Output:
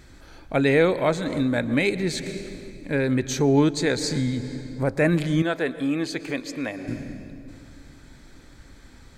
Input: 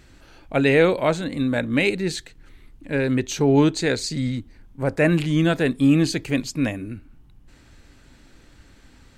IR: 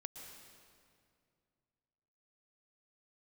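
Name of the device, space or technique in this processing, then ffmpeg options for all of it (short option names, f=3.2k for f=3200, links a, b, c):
ducked reverb: -filter_complex "[0:a]bandreject=f=2.8k:w=6.6,asplit=3[a][b][c];[1:a]atrim=start_sample=2205[d];[b][d]afir=irnorm=-1:irlink=0[e];[c]apad=whole_len=404479[f];[e][f]sidechaincompress=threshold=-27dB:ratio=8:attack=23:release=323,volume=4dB[g];[a][g]amix=inputs=2:normalize=0,asettb=1/sr,asplit=3[h][i][j];[h]atrim=end=5.424[k];[i]atrim=start=5.42:end=6.88,asetpts=PTS-STARTPTS,afade=t=in:d=0.004:c=qsin,afade=t=out:st=1.456:d=0.004:c=qsin,bass=f=250:g=-15,treble=f=4k:g=-7[l];[j]atrim=start=6.876[m];[k][l]acrossfade=d=0.004:c1=hsin:c2=qsin[n];[n][m]acrossfade=d=0.004:c1=qsin:c2=hsin,volume=-3.5dB"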